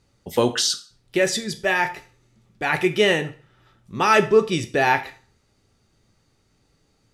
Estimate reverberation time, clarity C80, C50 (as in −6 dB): 0.40 s, 19.0 dB, 14.0 dB